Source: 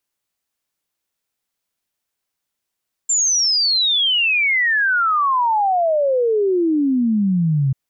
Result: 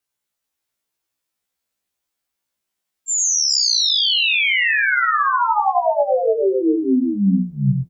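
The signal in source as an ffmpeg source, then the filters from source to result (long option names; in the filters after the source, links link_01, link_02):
-f lavfi -i "aevalsrc='0.2*clip(min(t,4.64-t)/0.01,0,1)*sin(2*PI*7400*4.64/log(130/7400)*(exp(log(130/7400)*t/4.64)-1))':duration=4.64:sample_rate=44100"
-filter_complex "[0:a]asplit=2[link_01][link_02];[link_02]aecho=0:1:100|420:0.596|0.473[link_03];[link_01][link_03]amix=inputs=2:normalize=0,afftfilt=real='re*1.73*eq(mod(b,3),0)':imag='im*1.73*eq(mod(b,3),0)':win_size=2048:overlap=0.75"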